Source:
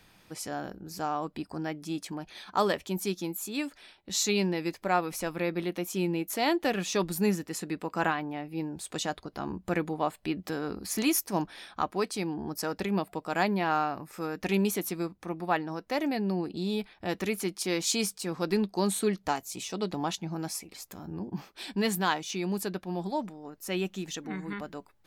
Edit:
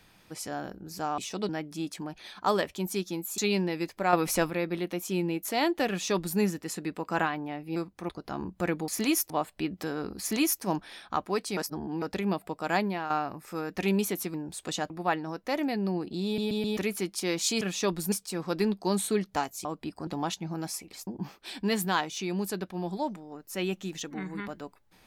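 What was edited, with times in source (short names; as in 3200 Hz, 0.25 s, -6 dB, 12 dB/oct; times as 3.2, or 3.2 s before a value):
1.18–1.6 swap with 19.57–19.88
3.49–4.23 cut
4.98–5.35 gain +7 dB
6.73–7.24 copy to 18.04
8.61–9.17 swap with 15–15.33
10.86–11.28 copy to 9.96
12.23–12.68 reverse
13.45–13.76 fade out, to -10 dB
16.68 stutter in place 0.13 s, 4 plays
20.88–21.2 cut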